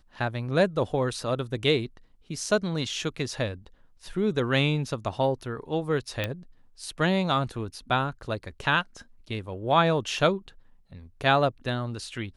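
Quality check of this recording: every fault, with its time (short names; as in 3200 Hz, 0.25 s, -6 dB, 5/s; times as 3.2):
6.24 pop -14 dBFS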